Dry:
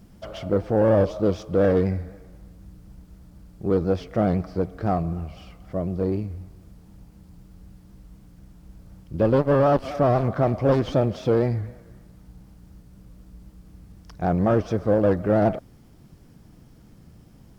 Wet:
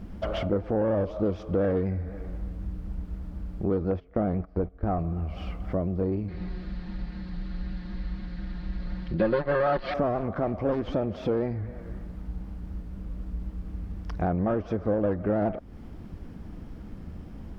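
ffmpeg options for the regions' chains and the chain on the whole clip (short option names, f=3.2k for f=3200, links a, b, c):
-filter_complex "[0:a]asettb=1/sr,asplit=3[a][b][c];[a]atrim=end=3.914[d];[b]atrim=start=3.91:end=4.99,asetpts=PTS-STARTPTS,afade=t=in:d=0.004:c=qsin,afade=t=out:st=1.076:d=0.004:c=qsin,lowpass=f=2k:p=1,agate=range=-17dB:threshold=-33dB:ratio=16:release=100:detection=peak,asubboost=boost=9.5:cutoff=60[e];[c]atrim=start=4.986[f];[d][e]acrossfade=d=0.004:c1=hsin:c2=qsin[g];[g][f]acrossfade=d=0.004:c1=qsin:c2=hsin,asettb=1/sr,asplit=3[h][i][j];[h]atrim=end=6.284[k];[i]atrim=start=6.28:end=9.94,asetpts=PTS-STARTPTS,afade=t=in:d=0.004:c=qsin,afade=t=out:st=3.656:d=0.004:c=qsin,lowpass=f=4.2k:t=q:w=6.1,equalizer=f=1.8k:t=o:w=0.74:g=10.5,aecho=1:1:5.6:0.82,atrim=end_sample=161406[l];[j]atrim=start=9.936[m];[k][l]acrossfade=d=0.004:c1=hsin:c2=qsin[n];[n][m]acrossfade=d=0.004:c1=qsin:c2=hsin,bass=f=250:g=6,treble=f=4k:g=-15,acompressor=threshold=-31dB:ratio=4,equalizer=f=130:w=2.2:g=-12.5,volume=7.5dB"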